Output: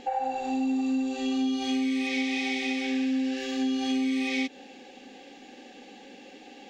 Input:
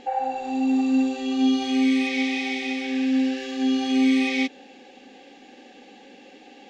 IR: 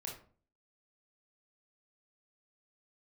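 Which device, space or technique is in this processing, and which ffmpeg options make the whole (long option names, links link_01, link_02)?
ASMR close-microphone chain: -af "lowshelf=frequency=150:gain=4,acompressor=threshold=-24dB:ratio=6,highshelf=frequency=6100:gain=6,volume=-1dB"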